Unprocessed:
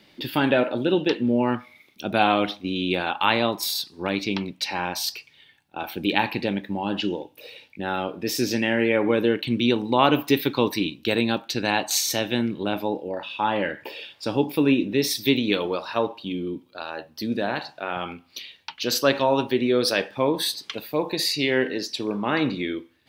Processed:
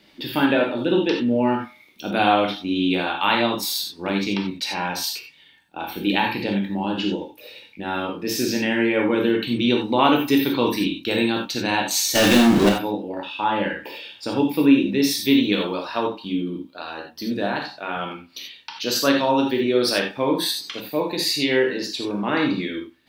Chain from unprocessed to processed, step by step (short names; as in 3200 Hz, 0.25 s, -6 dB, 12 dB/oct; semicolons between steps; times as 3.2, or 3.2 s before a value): 12.15–12.69 power-law curve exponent 0.35; non-linear reverb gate 0.11 s flat, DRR 1 dB; gain -1 dB